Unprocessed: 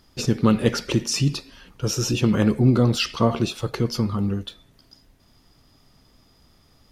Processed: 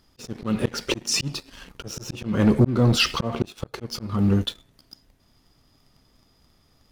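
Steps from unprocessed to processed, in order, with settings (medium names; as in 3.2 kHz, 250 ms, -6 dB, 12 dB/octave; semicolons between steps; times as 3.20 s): 1.86–3.67 s: treble shelf 3.1 kHz -4.5 dB; slow attack 382 ms; waveshaping leveller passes 2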